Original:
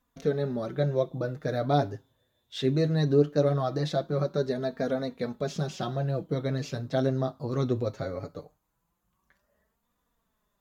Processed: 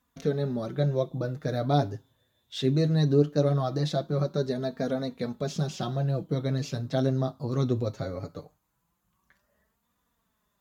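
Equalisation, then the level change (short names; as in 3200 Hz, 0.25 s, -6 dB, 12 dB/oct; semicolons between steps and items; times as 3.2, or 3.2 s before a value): HPF 52 Hz; bell 500 Hz -4 dB 1.6 oct; dynamic EQ 1800 Hz, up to -5 dB, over -50 dBFS, Q 0.93; +3.0 dB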